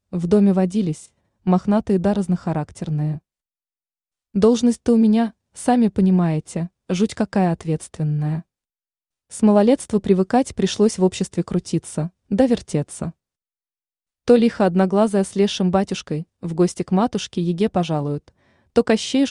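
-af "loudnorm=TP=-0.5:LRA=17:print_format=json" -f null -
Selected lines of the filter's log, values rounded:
"input_i" : "-20.0",
"input_tp" : "-2.8",
"input_lra" : "3.0",
"input_thresh" : "-30.3",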